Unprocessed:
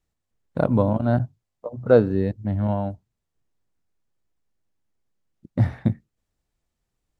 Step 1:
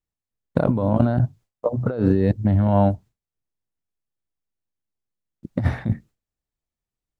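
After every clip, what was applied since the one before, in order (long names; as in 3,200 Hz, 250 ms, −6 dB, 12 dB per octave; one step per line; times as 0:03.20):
compressor whose output falls as the input rises −25 dBFS, ratio −1
noise gate with hold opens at −55 dBFS
level +6 dB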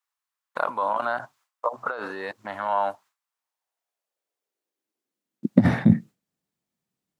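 brickwall limiter −11 dBFS, peak gain reduction 6.5 dB
high-pass filter sweep 1,100 Hz → 180 Hz, 0:03.17–0:05.76
level +5 dB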